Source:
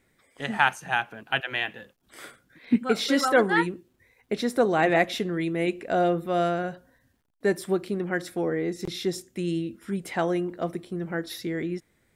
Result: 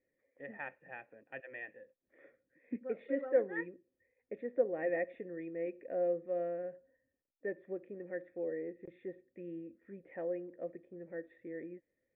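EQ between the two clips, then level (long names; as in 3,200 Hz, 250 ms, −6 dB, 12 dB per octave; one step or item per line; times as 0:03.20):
formant resonators in series e
high-frequency loss of the air 250 metres
parametric band 290 Hz +8 dB 0.52 octaves
−4.5 dB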